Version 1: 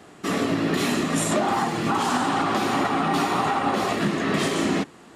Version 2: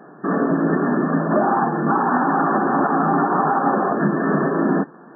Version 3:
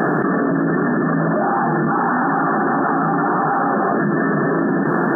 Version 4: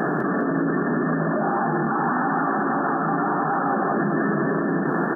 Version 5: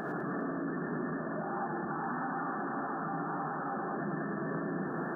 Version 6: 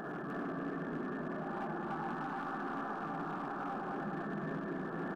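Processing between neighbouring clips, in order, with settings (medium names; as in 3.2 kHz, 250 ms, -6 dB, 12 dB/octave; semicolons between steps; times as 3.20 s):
FFT band-pass 130–1800 Hz; trim +5 dB
graphic EQ 125/250/500/1000 Hz -3/-4/-5/-6 dB; peak limiter -21 dBFS, peak gain reduction 8.5 dB; level flattener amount 100%; trim +9 dB
feedback delay 204 ms, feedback 40%, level -8 dB; trim -5.5 dB
peak limiter -22.5 dBFS, peak gain reduction 10.5 dB; gated-style reverb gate 130 ms rising, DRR 5.5 dB; trim -7 dB
tracing distortion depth 0.021 ms; overload inside the chain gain 30.5 dB; delay 302 ms -3.5 dB; trim -5 dB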